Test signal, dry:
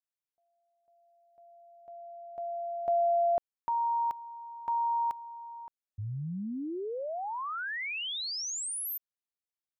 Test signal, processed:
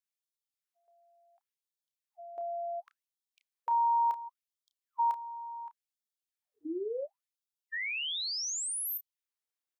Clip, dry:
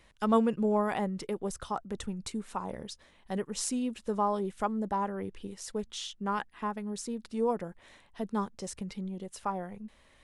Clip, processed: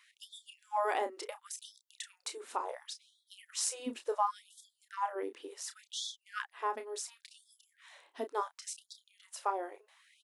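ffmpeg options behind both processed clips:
ffmpeg -i in.wav -filter_complex "[0:a]asplit=2[link_01][link_02];[link_02]adelay=31,volume=-9dB[link_03];[link_01][link_03]amix=inputs=2:normalize=0,afftfilt=real='re*gte(b*sr/1024,250*pow(3300/250,0.5+0.5*sin(2*PI*0.7*pts/sr)))':imag='im*gte(b*sr/1024,250*pow(3300/250,0.5+0.5*sin(2*PI*0.7*pts/sr)))':win_size=1024:overlap=0.75" out.wav

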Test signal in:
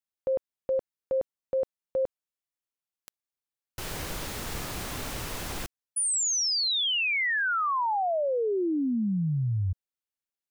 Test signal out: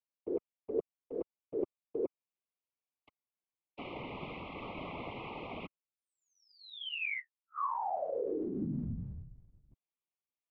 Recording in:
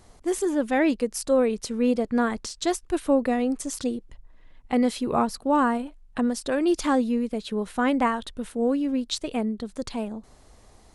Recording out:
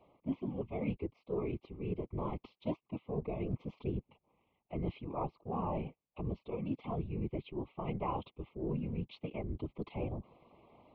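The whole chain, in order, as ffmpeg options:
ffmpeg -i in.wav -af "areverse,acompressor=threshold=-32dB:ratio=20:attack=87:release=538:knee=1:detection=rms,areverse,asuperstop=centerf=1700:order=20:qfactor=2,highpass=frequency=230:width_type=q:width=0.5412,highpass=frequency=230:width_type=q:width=1.307,lowpass=frequency=2900:width_type=q:width=0.5176,lowpass=frequency=2900:width_type=q:width=0.7071,lowpass=frequency=2900:width_type=q:width=1.932,afreqshift=-110,afftfilt=real='hypot(re,im)*cos(2*PI*random(0))':imag='hypot(re,im)*sin(2*PI*random(1))':win_size=512:overlap=0.75,volume=4dB" out.wav

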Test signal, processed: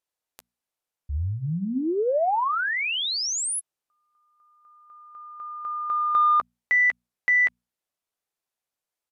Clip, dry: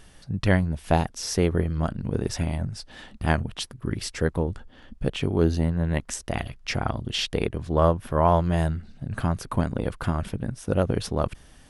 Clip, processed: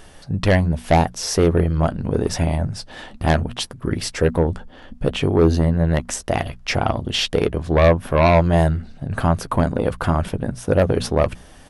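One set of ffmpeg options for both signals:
ffmpeg -i in.wav -filter_complex "[0:a]equalizer=frequency=660:width_type=o:width=1.8:gain=5.5,bandreject=frequency=60:width_type=h:width=6,bandreject=frequency=120:width_type=h:width=6,bandreject=frequency=180:width_type=h:width=6,bandreject=frequency=240:width_type=h:width=6,asplit=2[link_01][link_02];[link_02]aeval=exprs='0.75*sin(PI/2*3.16*val(0)/0.75)':channel_layout=same,volume=-7dB[link_03];[link_01][link_03]amix=inputs=2:normalize=0,asplit=2[link_04][link_05];[link_05]adelay=12,volume=-13.5dB[link_06];[link_04][link_06]amix=inputs=2:normalize=0,aresample=32000,aresample=44100,volume=-4.5dB" out.wav

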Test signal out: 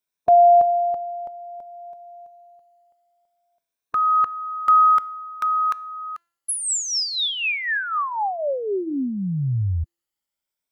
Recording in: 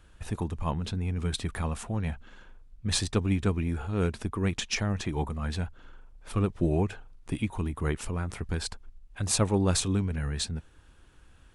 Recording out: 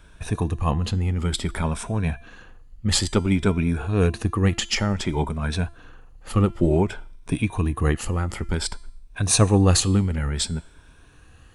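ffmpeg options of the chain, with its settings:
ffmpeg -i in.wav -af "afftfilt=real='re*pow(10,8/40*sin(2*PI*(1.6*log(max(b,1)*sr/1024/100)/log(2)-(0.56)*(pts-256)/sr)))':imag='im*pow(10,8/40*sin(2*PI*(1.6*log(max(b,1)*sr/1024/100)/log(2)-(0.56)*(pts-256)/sr)))':win_size=1024:overlap=0.75,bandreject=frequency=340.9:width_type=h:width=4,bandreject=frequency=681.8:width_type=h:width=4,bandreject=frequency=1022.7:width_type=h:width=4,bandreject=frequency=1363.6:width_type=h:width=4,bandreject=frequency=1704.5:width_type=h:width=4,bandreject=frequency=2045.4:width_type=h:width=4,bandreject=frequency=2386.3:width_type=h:width=4,bandreject=frequency=2727.2:width_type=h:width=4,bandreject=frequency=3068.1:width_type=h:width=4,bandreject=frequency=3409:width_type=h:width=4,bandreject=frequency=3749.9:width_type=h:width=4,bandreject=frequency=4090.8:width_type=h:width=4,bandreject=frequency=4431.7:width_type=h:width=4,bandreject=frequency=4772.6:width_type=h:width=4,bandreject=frequency=5113.5:width_type=h:width=4,bandreject=frequency=5454.4:width_type=h:width=4,bandreject=frequency=5795.3:width_type=h:width=4,bandreject=frequency=6136.2:width_type=h:width=4,bandreject=frequency=6477.1:width_type=h:width=4,bandreject=frequency=6818:width_type=h:width=4,bandreject=frequency=7158.9:width_type=h:width=4,bandreject=frequency=7499.8:width_type=h:width=4,bandreject=frequency=7840.7:width_type=h:width=4,bandreject=frequency=8181.6:width_type=h:width=4,bandreject=frequency=8522.5:width_type=h:width=4,bandreject=frequency=8863.4:width_type=h:width=4,bandreject=frequency=9204.3:width_type=h:width=4,bandreject=frequency=9545.2:width_type=h:width=4,bandreject=frequency=9886.1:width_type=h:width=4,bandreject=frequency=10227:width_type=h:width=4,bandreject=frequency=10567.9:width_type=h:width=4,bandreject=frequency=10908.8:width_type=h:width=4,bandreject=frequency=11249.7:width_type=h:width=4,bandreject=frequency=11590.6:width_type=h:width=4,bandreject=frequency=11931.5:width_type=h:width=4,bandreject=frequency=12272.4:width_type=h:width=4,bandreject=frequency=12613.3:width_type=h:width=4,volume=6.5dB" out.wav

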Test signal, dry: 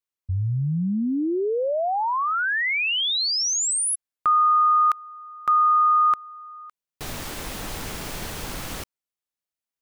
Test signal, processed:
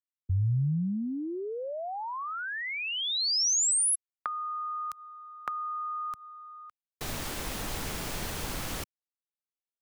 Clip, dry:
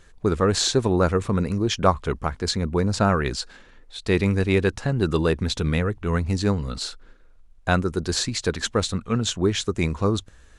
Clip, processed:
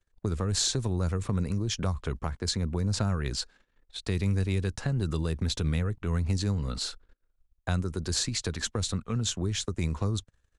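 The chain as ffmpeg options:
ffmpeg -i in.wav -filter_complex "[0:a]agate=range=-33dB:threshold=-39dB:ratio=3:release=38:detection=peak,acrossover=split=160|4600[link_01][link_02][link_03];[link_02]acompressor=threshold=-33dB:ratio=8:attack=15:release=149:knee=2.83:detection=peak[link_04];[link_01][link_04][link_03]amix=inputs=3:normalize=0,volume=-2dB" out.wav

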